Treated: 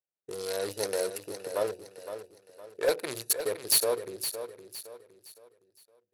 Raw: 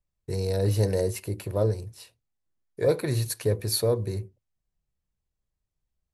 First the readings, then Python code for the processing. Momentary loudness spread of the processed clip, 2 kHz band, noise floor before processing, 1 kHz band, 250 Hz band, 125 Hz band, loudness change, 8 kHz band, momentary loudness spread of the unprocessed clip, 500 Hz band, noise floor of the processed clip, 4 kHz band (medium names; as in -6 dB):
19 LU, +2.5 dB, -84 dBFS, +1.5 dB, -10.5 dB, -26.0 dB, -3.0 dB, +5.0 dB, 10 LU, -3.5 dB, under -85 dBFS, +2.5 dB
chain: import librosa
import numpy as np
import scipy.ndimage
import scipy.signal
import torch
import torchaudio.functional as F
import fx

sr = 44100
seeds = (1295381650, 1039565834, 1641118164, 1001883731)

p1 = fx.wiener(x, sr, points=41)
p2 = scipy.signal.sosfilt(scipy.signal.butter(2, 630.0, 'highpass', fs=sr, output='sos'), p1)
p3 = fx.high_shelf(p2, sr, hz=3700.0, db=9.5)
p4 = fx.level_steps(p3, sr, step_db=24)
p5 = p3 + (p4 * librosa.db_to_amplitude(-2.0))
p6 = np.clip(p5, -10.0 ** (-20.5 / 20.0), 10.0 ** (-20.5 / 20.0))
p7 = p6 + fx.echo_feedback(p6, sr, ms=513, feedback_pct=36, wet_db=-10, dry=0)
y = p7 * librosa.db_to_amplitude(1.5)